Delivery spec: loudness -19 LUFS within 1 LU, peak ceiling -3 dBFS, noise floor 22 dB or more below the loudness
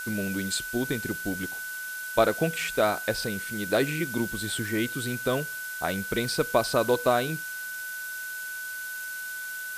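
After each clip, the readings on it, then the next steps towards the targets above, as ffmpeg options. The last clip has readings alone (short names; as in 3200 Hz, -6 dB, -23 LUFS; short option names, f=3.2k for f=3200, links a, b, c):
steady tone 1500 Hz; tone level -34 dBFS; noise floor -36 dBFS; noise floor target -51 dBFS; loudness -28.5 LUFS; peak -7.0 dBFS; loudness target -19.0 LUFS
-> -af "bandreject=f=1.5k:w=30"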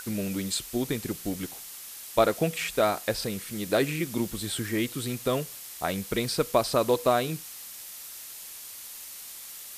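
steady tone none; noise floor -43 dBFS; noise floor target -52 dBFS
-> -af "afftdn=nr=9:nf=-43"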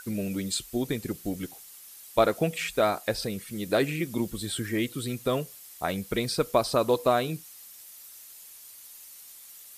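noise floor -48 dBFS; noise floor target -51 dBFS
-> -af "afftdn=nr=6:nf=-48"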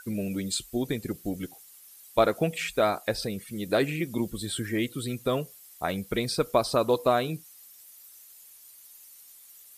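noise floor -52 dBFS; loudness -28.5 LUFS; peak -7.5 dBFS; loudness target -19.0 LUFS
-> -af "volume=9.5dB,alimiter=limit=-3dB:level=0:latency=1"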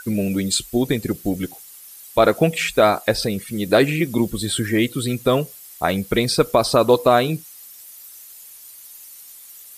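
loudness -19.5 LUFS; peak -3.0 dBFS; noise floor -42 dBFS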